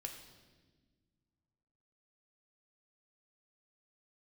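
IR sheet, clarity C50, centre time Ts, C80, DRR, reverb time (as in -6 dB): 7.0 dB, 28 ms, 8.5 dB, 3.0 dB, 1.4 s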